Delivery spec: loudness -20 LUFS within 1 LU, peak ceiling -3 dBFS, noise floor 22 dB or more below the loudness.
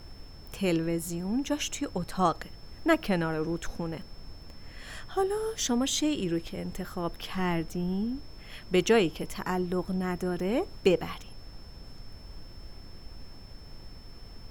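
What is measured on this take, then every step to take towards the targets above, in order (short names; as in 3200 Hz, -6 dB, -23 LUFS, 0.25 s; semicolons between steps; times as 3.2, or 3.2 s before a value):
steady tone 5300 Hz; tone level -54 dBFS; noise floor -47 dBFS; noise floor target -52 dBFS; loudness -30.0 LUFS; peak -10.0 dBFS; loudness target -20.0 LUFS
-> notch 5300 Hz, Q 30; noise print and reduce 6 dB; gain +10 dB; limiter -3 dBFS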